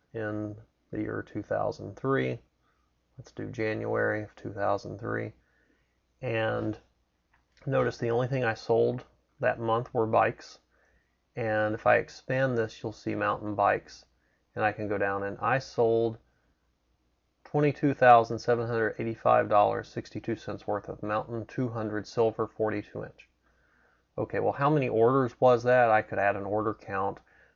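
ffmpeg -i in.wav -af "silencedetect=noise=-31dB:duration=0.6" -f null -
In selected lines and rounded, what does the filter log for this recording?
silence_start: 2.35
silence_end: 3.39 | silence_duration: 1.04
silence_start: 5.28
silence_end: 6.23 | silence_duration: 0.95
silence_start: 6.72
silence_end: 7.67 | silence_duration: 0.95
silence_start: 10.31
silence_end: 11.37 | silence_duration: 1.06
silence_start: 13.78
silence_end: 14.57 | silence_duration: 0.79
silence_start: 16.12
silence_end: 17.54 | silence_duration: 1.42
silence_start: 23.04
silence_end: 24.18 | silence_duration: 1.14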